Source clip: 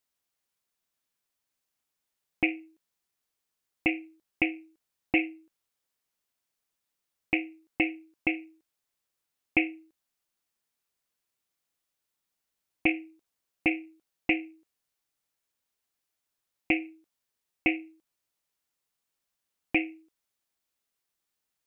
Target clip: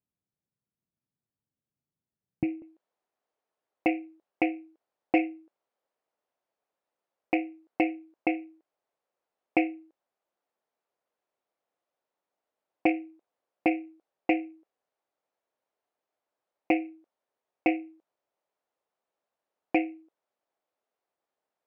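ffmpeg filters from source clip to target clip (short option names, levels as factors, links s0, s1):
-af "acontrast=73,asetnsamples=n=441:p=0,asendcmd='2.62 bandpass f 610',bandpass=f=140:t=q:w=1.6:csg=0,volume=1.58"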